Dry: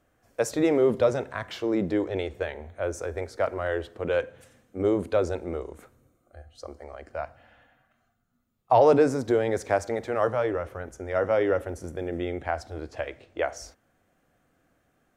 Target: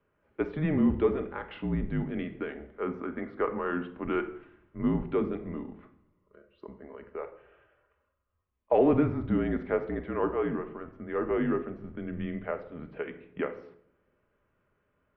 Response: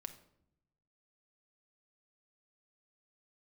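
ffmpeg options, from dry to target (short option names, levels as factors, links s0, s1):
-filter_complex "[0:a]asettb=1/sr,asplit=3[s0][s1][s2];[s0]atrim=end=2.784[s3];[s1]atrim=start=2.78:end=5.04,asetpts=PTS-STARTPTS,afade=t=in:d=0.004:c=qsin,afade=t=out:st=2.256:d=0.004:c=qsin,equalizer=f=1400:t=o:w=1.2:g=5[s4];[s2]atrim=start=5.036[s5];[s3][s4]acrossfade=d=0.004:c1=hsin:c2=qsin[s6];[s6][s5]acrossfade=d=0.004:c1=qsin:c2=hsin[s7];[1:a]atrim=start_sample=2205[s8];[s7][s8]afir=irnorm=-1:irlink=0,highpass=f=180:t=q:w=0.5412,highpass=f=180:t=q:w=1.307,lowpass=f=3100:t=q:w=0.5176,lowpass=f=3100:t=q:w=0.7071,lowpass=f=3100:t=q:w=1.932,afreqshift=-160"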